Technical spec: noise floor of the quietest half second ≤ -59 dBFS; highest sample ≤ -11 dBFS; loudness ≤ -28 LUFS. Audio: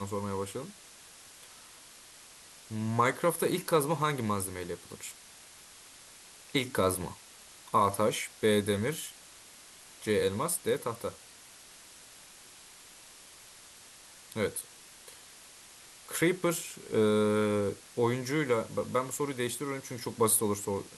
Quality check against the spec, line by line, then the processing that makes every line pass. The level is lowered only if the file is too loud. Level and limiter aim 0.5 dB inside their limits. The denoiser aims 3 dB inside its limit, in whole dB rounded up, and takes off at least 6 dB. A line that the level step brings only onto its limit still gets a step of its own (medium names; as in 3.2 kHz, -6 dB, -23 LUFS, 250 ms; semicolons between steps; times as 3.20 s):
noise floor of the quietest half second -53 dBFS: fail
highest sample -13.0 dBFS: pass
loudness -30.5 LUFS: pass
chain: noise reduction 9 dB, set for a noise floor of -53 dBFS